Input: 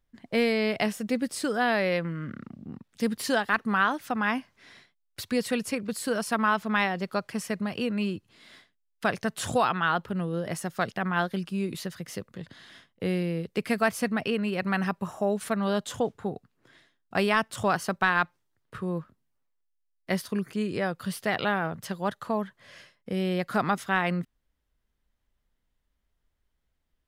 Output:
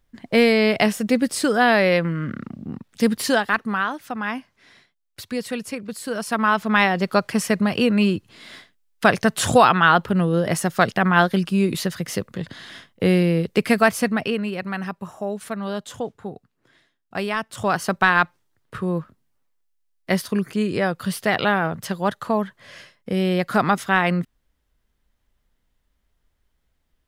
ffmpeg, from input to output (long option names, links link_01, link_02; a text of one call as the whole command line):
ffmpeg -i in.wav -af "volume=27dB,afade=type=out:start_time=3.07:duration=0.77:silence=0.375837,afade=type=in:start_time=6.07:duration=1.13:silence=0.298538,afade=type=out:start_time=13.43:duration=1.26:silence=0.266073,afade=type=in:start_time=17.46:duration=0.48:silence=0.398107" out.wav